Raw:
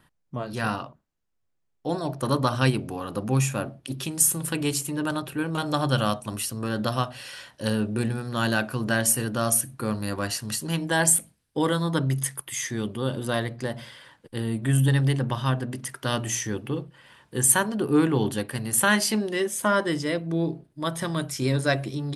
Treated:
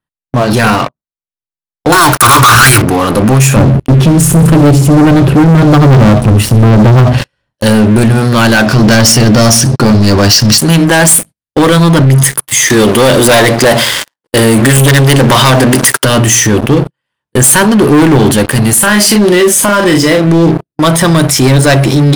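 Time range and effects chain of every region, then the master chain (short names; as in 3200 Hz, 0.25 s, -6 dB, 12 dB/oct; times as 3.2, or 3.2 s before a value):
1.92–2.82 EQ curve 110 Hz 0 dB, 210 Hz -29 dB, 300 Hz -8 dB, 560 Hz -16 dB, 1400 Hz +15 dB, 3200 Hz -3 dB, 9700 Hz +12 dB + sample leveller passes 5
3.56–7.53 tilt -4.5 dB/oct + hard clip -16 dBFS + thin delay 69 ms, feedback 49%, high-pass 4700 Hz, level -10 dB
8.66–10.58 synth low-pass 5300 Hz, resonance Q 5.2 + low shelf 470 Hz +7.5 dB
12.7–16.05 sample leveller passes 3 + tone controls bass -12 dB, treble +3 dB
18.73–20.29 compressor, threshold -24 dBFS + doubler 39 ms -6.5 dB
whole clip: gate -37 dBFS, range -26 dB; sample leveller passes 5; maximiser +15.5 dB; gain -1 dB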